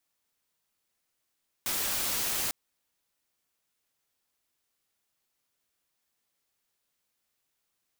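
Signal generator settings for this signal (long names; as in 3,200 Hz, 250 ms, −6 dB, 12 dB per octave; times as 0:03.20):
noise white, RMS −30.5 dBFS 0.85 s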